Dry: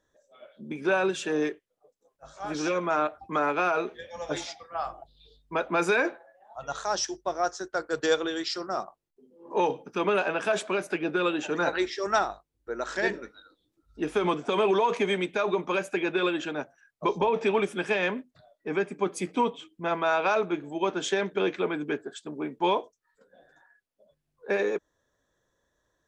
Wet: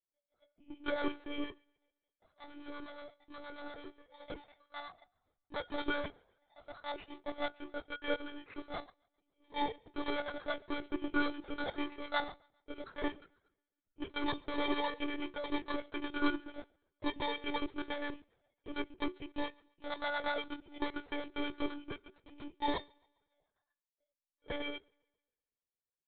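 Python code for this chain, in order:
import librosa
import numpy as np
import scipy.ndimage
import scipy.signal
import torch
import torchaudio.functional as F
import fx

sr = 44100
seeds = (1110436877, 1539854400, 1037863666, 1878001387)

p1 = fx.bit_reversed(x, sr, seeds[0], block=16)
p2 = fx.clip_hard(p1, sr, threshold_db=-31.5, at=(2.45, 4.25))
p3 = fx.harmonic_tremolo(p2, sr, hz=8.5, depth_pct=70, crossover_hz=650.0)
p4 = fx.comb_fb(p3, sr, f0_hz=360.0, decay_s=0.28, harmonics='all', damping=0.0, mix_pct=70)
p5 = p4 + fx.echo_thinned(p4, sr, ms=135, feedback_pct=59, hz=210.0, wet_db=-22.0, dry=0)
p6 = fx.power_curve(p5, sr, exponent=1.4)
p7 = fx.lpc_monotone(p6, sr, seeds[1], pitch_hz=290.0, order=16)
y = p7 * 10.0 ** (8.0 / 20.0)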